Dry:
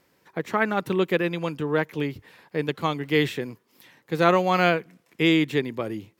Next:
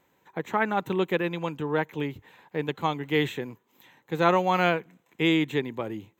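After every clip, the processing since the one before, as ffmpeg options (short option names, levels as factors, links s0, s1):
-af "superequalizer=9b=1.78:14b=0.282:16b=0.282,volume=0.708"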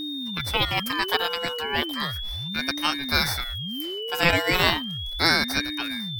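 -af "aeval=exprs='val(0)+0.0224*sin(2*PI*1700*n/s)':c=same,crystalizer=i=9.5:c=0,aeval=exprs='val(0)*sin(2*PI*1600*n/s+1600*0.25/0.35*sin(2*PI*0.35*n/s))':c=same,volume=0.891"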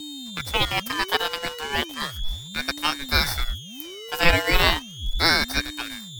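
-filter_complex "[0:a]asubboost=boost=5:cutoff=64,acrossover=split=200|1800|2800[s0][s1][s2][s3];[s2]acrusher=bits=5:mix=0:aa=0.5[s4];[s0][s1][s4][s3]amix=inputs=4:normalize=0,aeval=exprs='sgn(val(0))*max(abs(val(0))-0.015,0)':c=same,volume=1.26"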